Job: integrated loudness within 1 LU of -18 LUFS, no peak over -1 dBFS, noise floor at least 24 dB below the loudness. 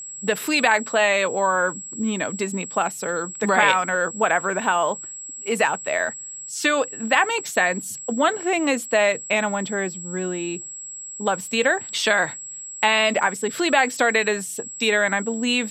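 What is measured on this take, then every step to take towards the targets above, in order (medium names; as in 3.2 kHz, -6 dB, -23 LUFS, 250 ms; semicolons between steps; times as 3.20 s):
steady tone 7.7 kHz; tone level -33 dBFS; loudness -21.5 LUFS; peak level -3.5 dBFS; loudness target -18.0 LUFS
-> band-stop 7.7 kHz, Q 30; trim +3.5 dB; peak limiter -1 dBFS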